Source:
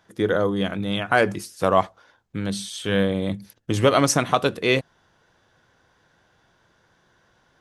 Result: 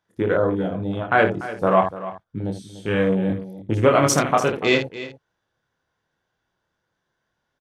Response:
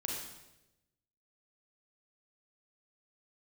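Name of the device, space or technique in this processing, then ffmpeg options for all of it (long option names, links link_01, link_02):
slapback doubling: -filter_complex "[0:a]asplit=3[link_01][link_02][link_03];[link_02]adelay=27,volume=-4dB[link_04];[link_03]adelay=79,volume=-8.5dB[link_05];[link_01][link_04][link_05]amix=inputs=3:normalize=0,afwtdn=0.0447,asettb=1/sr,asplit=3[link_06][link_07][link_08];[link_06]atrim=end=0.684[link_09];[link_07]atrim=start=0.68:end=1.59,asetpts=PTS-STARTPTS,afade=type=in:duration=0.004:curve=qsin,afade=type=out:start_time=0.906:duration=0.004:curve=qsin,lowpass=8700[link_10];[link_08]atrim=start=1.586[link_11];[link_09][link_10]acrossfade=duration=0.004:curve1=hsin:curve2=qsin[link_12];[link_12][link_11]acrossfade=duration=0.004:curve1=qsin:curve2=hsin,aecho=1:1:292:0.188"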